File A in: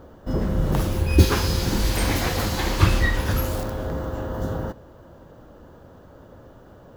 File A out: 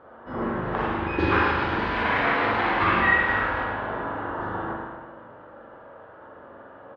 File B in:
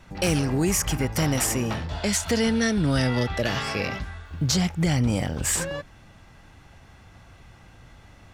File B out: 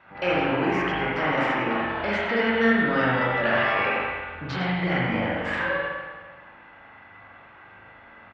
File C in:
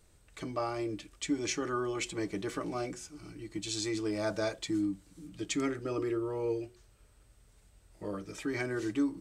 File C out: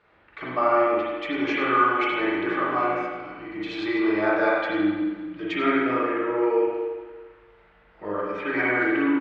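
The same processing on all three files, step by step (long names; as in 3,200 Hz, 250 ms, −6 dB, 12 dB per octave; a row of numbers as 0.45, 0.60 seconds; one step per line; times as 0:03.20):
resonant band-pass 1,500 Hz, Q 0.92
high-frequency loss of the air 350 metres
double-tracking delay 22 ms −12.5 dB
single-tap delay 100 ms −11 dB
spring reverb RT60 1.4 s, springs 39/48 ms, chirp 45 ms, DRR −5.5 dB
loudness normalisation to −24 LKFS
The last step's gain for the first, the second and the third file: +4.0, +5.0, +14.0 decibels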